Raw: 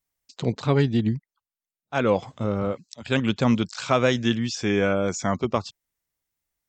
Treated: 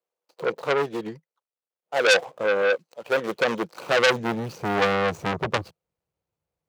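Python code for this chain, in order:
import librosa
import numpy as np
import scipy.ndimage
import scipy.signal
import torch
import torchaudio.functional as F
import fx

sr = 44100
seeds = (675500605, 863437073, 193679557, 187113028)

p1 = scipy.ndimage.median_filter(x, 25, mode='constant')
p2 = fx.rider(p1, sr, range_db=10, speed_s=2.0)
p3 = p1 + F.gain(torch.from_numpy(p2), 1.0).numpy()
p4 = fx.filter_sweep_highpass(p3, sr, from_hz=450.0, to_hz=80.0, start_s=3.39, end_s=5.08, q=1.1)
p5 = fx.graphic_eq_31(p4, sr, hz=(160, 250, 500), db=(5, -10, 8))
p6 = fx.transformer_sat(p5, sr, knee_hz=3500.0)
y = F.gain(torch.from_numpy(p6), -2.5).numpy()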